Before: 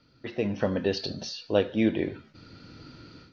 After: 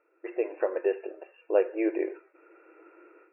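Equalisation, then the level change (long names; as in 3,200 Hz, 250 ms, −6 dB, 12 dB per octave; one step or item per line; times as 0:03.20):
linear-phase brick-wall band-pass 320–2,800 Hz
spectral tilt −2.5 dB per octave
−1.5 dB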